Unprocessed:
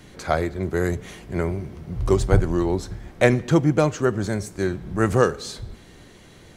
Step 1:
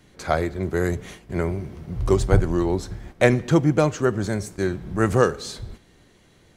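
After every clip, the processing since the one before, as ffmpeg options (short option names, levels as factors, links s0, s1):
-af "agate=range=0.398:threshold=0.0112:ratio=16:detection=peak"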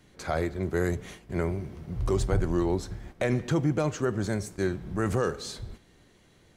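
-af "alimiter=limit=0.251:level=0:latency=1:release=20,volume=0.631"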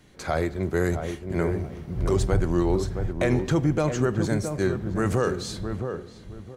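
-filter_complex "[0:a]asplit=2[s0][s1];[s1]adelay=667,lowpass=f=1000:p=1,volume=0.501,asplit=2[s2][s3];[s3]adelay=667,lowpass=f=1000:p=1,volume=0.28,asplit=2[s4][s5];[s5]adelay=667,lowpass=f=1000:p=1,volume=0.28,asplit=2[s6][s7];[s7]adelay=667,lowpass=f=1000:p=1,volume=0.28[s8];[s0][s2][s4][s6][s8]amix=inputs=5:normalize=0,volume=1.41"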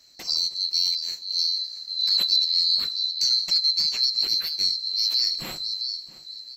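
-af "afftfilt=real='real(if(lt(b,736),b+184*(1-2*mod(floor(b/184),2)),b),0)':imag='imag(if(lt(b,736),b+184*(1-2*mod(floor(b/184),2)),b),0)':win_size=2048:overlap=0.75"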